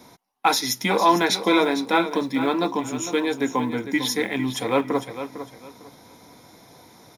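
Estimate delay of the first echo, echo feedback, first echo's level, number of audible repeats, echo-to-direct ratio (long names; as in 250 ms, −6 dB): 453 ms, 24%, −11.0 dB, 2, −10.5 dB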